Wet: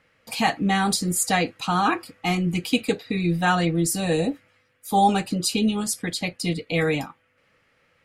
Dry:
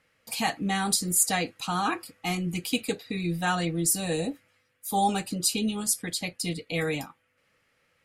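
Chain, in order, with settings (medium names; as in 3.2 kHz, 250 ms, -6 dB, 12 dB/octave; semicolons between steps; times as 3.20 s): treble shelf 6 kHz -11.5 dB; trim +6.5 dB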